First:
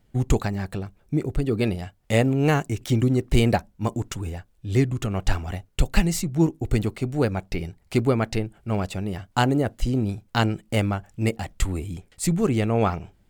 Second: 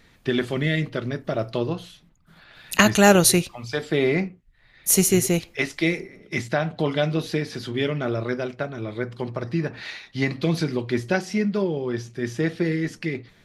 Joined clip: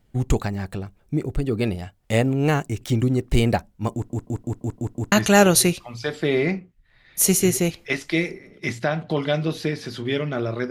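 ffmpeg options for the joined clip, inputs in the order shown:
ffmpeg -i cue0.wav -i cue1.wav -filter_complex "[0:a]apad=whole_dur=10.7,atrim=end=10.7,asplit=7[link_01][link_02][link_03][link_04][link_05][link_06][link_07];[link_01]atrim=end=4.102[link_08];[link_02]atrim=start=3.928:end=4.102[link_09];[link_03]atrim=start=3.928:end=4.102[link_10];[link_04]atrim=start=3.928:end=4.102[link_11];[link_05]atrim=start=3.928:end=4.102[link_12];[link_06]atrim=start=3.928:end=4.102[link_13];[link_07]atrim=start=3.928:end=4.102[link_14];[1:a]atrim=start=2.808:end=8.39[link_15];[link_08][link_09]acrossfade=duration=0.004:curve1=hsin:curve2=hsin[link_16];[link_16][link_10]acrossfade=duration=0.004:curve1=hsin:curve2=hsin[link_17];[link_17][link_11]acrossfade=duration=0.004:curve1=hsin:curve2=hsin[link_18];[link_18][link_12]acrossfade=duration=0.004:curve1=hsin:curve2=hsin[link_19];[link_19][link_13]acrossfade=duration=0.004:curve1=hsin:curve2=hsin[link_20];[link_20][link_14]acrossfade=duration=0.004:curve1=hsin:curve2=hsin[link_21];[link_21][link_15]acrossfade=duration=0.004:curve1=hsin:curve2=hsin" out.wav

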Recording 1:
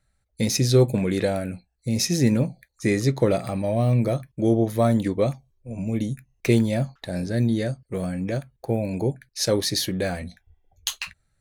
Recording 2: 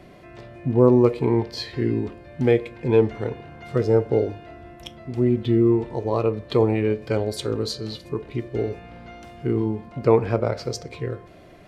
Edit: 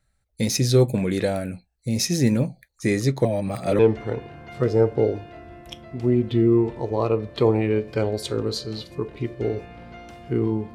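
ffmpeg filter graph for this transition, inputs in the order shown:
ffmpeg -i cue0.wav -i cue1.wav -filter_complex "[0:a]apad=whole_dur=10.74,atrim=end=10.74,asplit=2[link_01][link_02];[link_01]atrim=end=3.252[link_03];[link_02]atrim=start=3.248:end=3.792,asetpts=PTS-STARTPTS,areverse[link_04];[1:a]atrim=start=2.928:end=9.88[link_05];[link_03][link_04]acrossfade=duration=0.004:curve1=hsin:curve2=hsin[link_06];[link_06][link_05]acrossfade=duration=0.004:curve1=hsin:curve2=hsin" out.wav

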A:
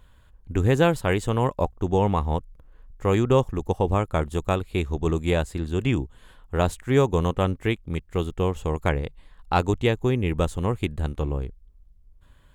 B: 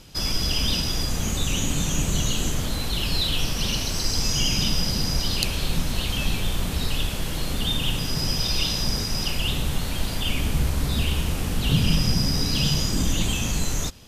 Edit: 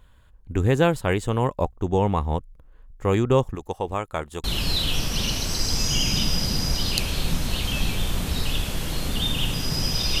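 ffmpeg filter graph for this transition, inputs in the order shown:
ffmpeg -i cue0.wav -i cue1.wav -filter_complex "[0:a]asettb=1/sr,asplit=3[link_01][link_02][link_03];[link_01]atrim=end=3.554[link_04];[link_02]atrim=start=3.55:end=4.44,asetpts=PTS-STARTPTS,afade=type=in:duration=0.004:curve=qsin,afade=type=out:start_time=0.886:duration=0.004:curve=qsin,lowshelf=frequency=400:gain=-11[link_05];[link_03]atrim=start=4.436[link_06];[link_04][link_05]acrossfade=duration=0.004:curve1=hsin:curve2=qsin[link_07];[link_07][link_06]acrossfade=duration=0.004:curve1=qsin:curve2=hsin,apad=whole_dur=10.2,atrim=end=10.2,atrim=end=4.442[link_08];[1:a]atrim=start=2.888:end=8.65[link_09];[link_08][link_09]acrossfade=duration=0.004:curve1=hsin:curve2=hsin" out.wav

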